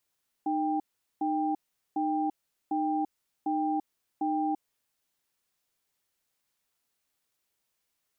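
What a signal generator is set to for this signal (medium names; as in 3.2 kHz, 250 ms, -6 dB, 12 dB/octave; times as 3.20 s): cadence 307 Hz, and 792 Hz, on 0.34 s, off 0.41 s, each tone -28.5 dBFS 4.48 s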